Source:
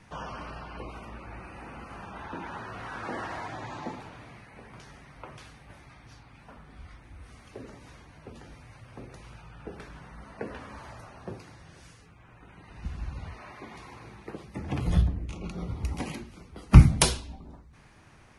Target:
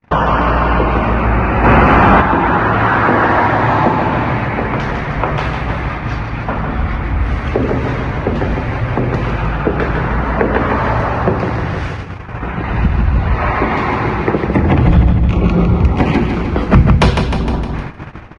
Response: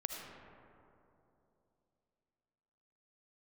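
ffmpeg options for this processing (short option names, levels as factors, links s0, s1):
-filter_complex "[0:a]lowpass=2200,acompressor=threshold=0.00708:ratio=3,aecho=1:1:154|308|462|616|770|924|1078|1232:0.501|0.296|0.174|0.103|0.0607|0.0358|0.0211|0.0125,asplit=3[s0][s1][s2];[s0]afade=t=out:st=1.63:d=0.02[s3];[s1]acontrast=76,afade=t=in:st=1.63:d=0.02,afade=t=out:st=2.2:d=0.02[s4];[s2]afade=t=in:st=2.2:d=0.02[s5];[s3][s4][s5]amix=inputs=3:normalize=0,apsyclip=42.2,agate=range=0.00158:threshold=0.112:ratio=16:detection=peak,volume=0.841"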